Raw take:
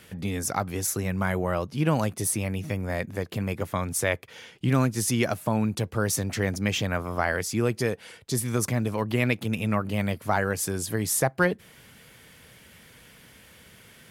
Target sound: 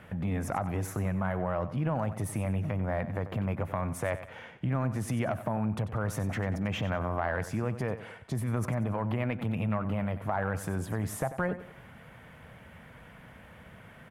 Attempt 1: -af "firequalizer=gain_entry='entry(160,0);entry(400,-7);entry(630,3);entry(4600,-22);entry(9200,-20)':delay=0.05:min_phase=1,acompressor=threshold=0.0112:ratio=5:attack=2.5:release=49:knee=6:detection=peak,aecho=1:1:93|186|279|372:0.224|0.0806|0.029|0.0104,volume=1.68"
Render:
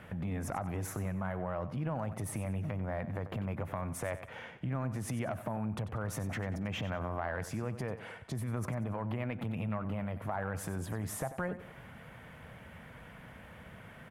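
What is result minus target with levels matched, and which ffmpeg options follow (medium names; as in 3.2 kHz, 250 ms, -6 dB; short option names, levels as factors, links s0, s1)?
compression: peak gain reduction +5.5 dB
-af "firequalizer=gain_entry='entry(160,0);entry(400,-7);entry(630,3);entry(4600,-22);entry(9200,-20)':delay=0.05:min_phase=1,acompressor=threshold=0.0251:ratio=5:attack=2.5:release=49:knee=6:detection=peak,aecho=1:1:93|186|279|372:0.224|0.0806|0.029|0.0104,volume=1.68"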